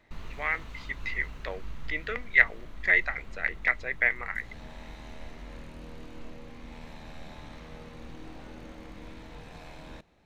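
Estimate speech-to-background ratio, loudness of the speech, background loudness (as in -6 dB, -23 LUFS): 19.0 dB, -27.5 LUFS, -46.5 LUFS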